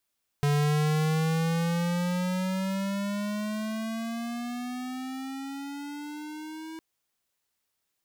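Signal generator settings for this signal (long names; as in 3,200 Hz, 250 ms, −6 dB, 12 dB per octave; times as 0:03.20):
pitch glide with a swell square, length 6.36 s, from 144 Hz, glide +14 semitones, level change −16.5 dB, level −23.5 dB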